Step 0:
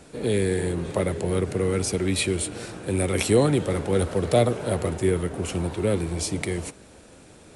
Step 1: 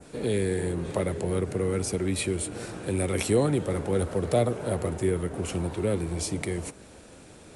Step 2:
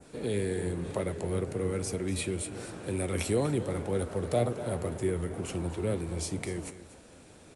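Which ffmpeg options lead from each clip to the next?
ffmpeg -i in.wav -filter_complex "[0:a]adynamicequalizer=threshold=0.00631:dfrequency=3600:dqfactor=0.75:tfrequency=3600:tqfactor=0.75:attack=5:release=100:ratio=0.375:range=2.5:mode=cutabove:tftype=bell,asplit=2[link_01][link_02];[link_02]acompressor=threshold=-31dB:ratio=6,volume=-2dB[link_03];[link_01][link_03]amix=inputs=2:normalize=0,volume=-5dB" out.wav
ffmpeg -i in.wav -af "flanger=delay=7.4:depth=5:regen=80:speed=2:shape=sinusoidal,aecho=1:1:242:0.188" out.wav

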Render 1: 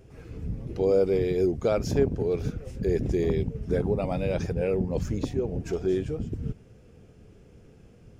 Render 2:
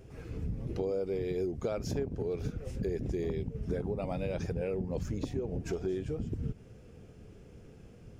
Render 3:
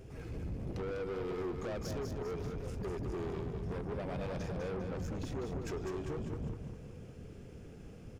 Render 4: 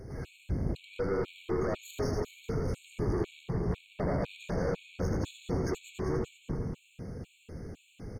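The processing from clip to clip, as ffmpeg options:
ffmpeg -i in.wav -af "acompressor=threshold=-31dB:ratio=5" out.wav
ffmpeg -i in.wav -af "asoftclip=type=tanh:threshold=-38dB,aecho=1:1:200|400|600|800|1000:0.501|0.226|0.101|0.0457|0.0206,volume=1.5dB" out.wav
ffmpeg -i in.wav -af "aecho=1:1:80|176|291.2|429.4|595.3:0.631|0.398|0.251|0.158|0.1,afftfilt=real='re*gt(sin(2*PI*2*pts/sr)*(1-2*mod(floor(b*sr/1024/2200),2)),0)':imag='im*gt(sin(2*PI*2*pts/sr)*(1-2*mod(floor(b*sr/1024/2200),2)),0)':win_size=1024:overlap=0.75,volume=6dB" out.wav

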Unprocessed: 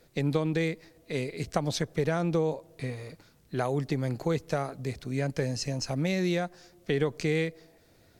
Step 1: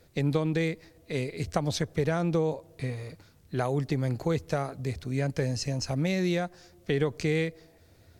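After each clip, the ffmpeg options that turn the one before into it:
ffmpeg -i in.wav -af "equalizer=frequency=83:width=2.3:gain=12" out.wav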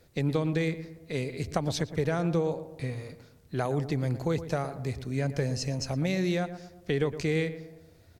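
ffmpeg -i in.wav -filter_complex "[0:a]asplit=2[link_01][link_02];[link_02]adelay=116,lowpass=frequency=1700:poles=1,volume=-12dB,asplit=2[link_03][link_04];[link_04]adelay=116,lowpass=frequency=1700:poles=1,volume=0.48,asplit=2[link_05][link_06];[link_06]adelay=116,lowpass=frequency=1700:poles=1,volume=0.48,asplit=2[link_07][link_08];[link_08]adelay=116,lowpass=frequency=1700:poles=1,volume=0.48,asplit=2[link_09][link_10];[link_10]adelay=116,lowpass=frequency=1700:poles=1,volume=0.48[link_11];[link_01][link_03][link_05][link_07][link_09][link_11]amix=inputs=6:normalize=0,volume=-1dB" out.wav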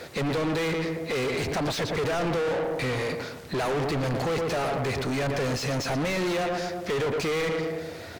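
ffmpeg -i in.wav -filter_complex "[0:a]asplit=2[link_01][link_02];[link_02]highpass=frequency=720:poles=1,volume=42dB,asoftclip=type=tanh:threshold=-11.5dB[link_03];[link_01][link_03]amix=inputs=2:normalize=0,lowpass=frequency=2600:poles=1,volume=-6dB,volume=-8dB" out.wav

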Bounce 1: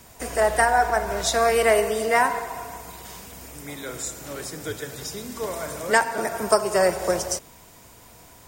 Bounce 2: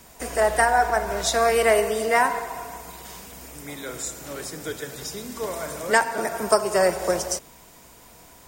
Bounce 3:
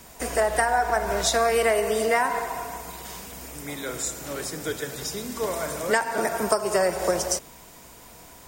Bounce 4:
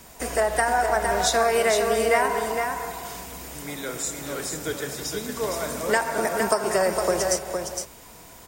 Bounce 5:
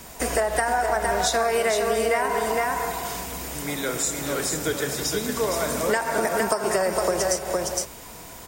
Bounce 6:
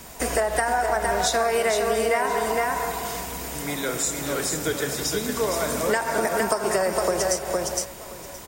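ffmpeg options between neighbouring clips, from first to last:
ffmpeg -i in.wav -af "equalizer=frequency=100:width_type=o:width=0.31:gain=-12.5" out.wav
ffmpeg -i in.wav -af "acompressor=threshold=-20dB:ratio=6,volume=2dB" out.wav
ffmpeg -i in.wav -af "aecho=1:1:461:0.531" out.wav
ffmpeg -i in.wav -af "acompressor=threshold=-25dB:ratio=4,volume=5dB" out.wav
ffmpeg -i in.wav -af "aecho=1:1:1033:0.112" out.wav

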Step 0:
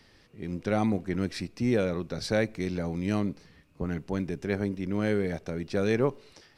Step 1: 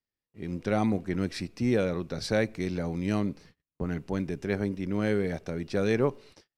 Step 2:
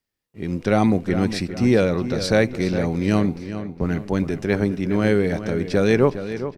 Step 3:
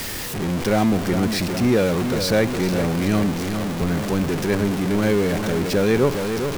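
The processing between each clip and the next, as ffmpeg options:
ffmpeg -i in.wav -af "agate=range=-36dB:threshold=-51dB:ratio=16:detection=peak" out.wav
ffmpeg -i in.wav -filter_complex "[0:a]asplit=2[link_01][link_02];[link_02]adelay=409,lowpass=frequency=4300:poles=1,volume=-11dB,asplit=2[link_03][link_04];[link_04]adelay=409,lowpass=frequency=4300:poles=1,volume=0.44,asplit=2[link_05][link_06];[link_06]adelay=409,lowpass=frequency=4300:poles=1,volume=0.44,asplit=2[link_07][link_08];[link_08]adelay=409,lowpass=frequency=4300:poles=1,volume=0.44,asplit=2[link_09][link_10];[link_10]adelay=409,lowpass=frequency=4300:poles=1,volume=0.44[link_11];[link_01][link_03][link_05][link_07][link_09][link_11]amix=inputs=6:normalize=0,volume=8.5dB" out.wav
ffmpeg -i in.wav -af "aeval=exprs='val(0)+0.5*0.133*sgn(val(0))':channel_layout=same,volume=-3.5dB" out.wav

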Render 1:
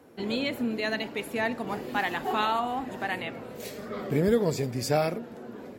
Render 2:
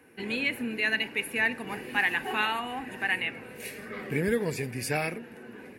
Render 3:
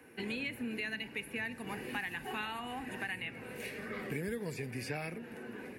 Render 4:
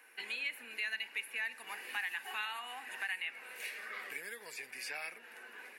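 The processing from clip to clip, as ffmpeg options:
ffmpeg -i in.wav -af "superequalizer=8b=0.562:11b=3.16:12b=3.55:16b=3.16,volume=-4dB" out.wav
ffmpeg -i in.wav -filter_complex "[0:a]acrossover=split=180|4400[link_01][link_02][link_03];[link_01]acompressor=threshold=-45dB:ratio=4[link_04];[link_02]acompressor=threshold=-39dB:ratio=4[link_05];[link_03]acompressor=threshold=-55dB:ratio=4[link_06];[link_04][link_05][link_06]amix=inputs=3:normalize=0" out.wav
ffmpeg -i in.wav -af "highpass=1100,volume=2dB" out.wav

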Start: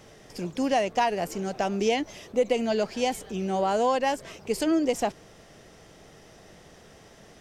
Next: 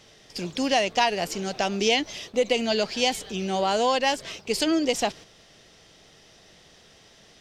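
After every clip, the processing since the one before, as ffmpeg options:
ffmpeg -i in.wav -af "equalizer=frequency=3900:width=0.78:gain=12,agate=range=-6dB:threshold=-41dB:ratio=16:detection=peak" out.wav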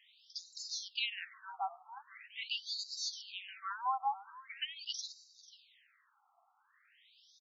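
ffmpeg -i in.wav -af "aecho=1:1:490:0.126,afftfilt=real='re*between(b*sr/1024,960*pow(5400/960,0.5+0.5*sin(2*PI*0.43*pts/sr))/1.41,960*pow(5400/960,0.5+0.5*sin(2*PI*0.43*pts/sr))*1.41)':imag='im*between(b*sr/1024,960*pow(5400/960,0.5+0.5*sin(2*PI*0.43*pts/sr))/1.41,960*pow(5400/960,0.5+0.5*sin(2*PI*0.43*pts/sr))*1.41)':win_size=1024:overlap=0.75,volume=-7dB" out.wav

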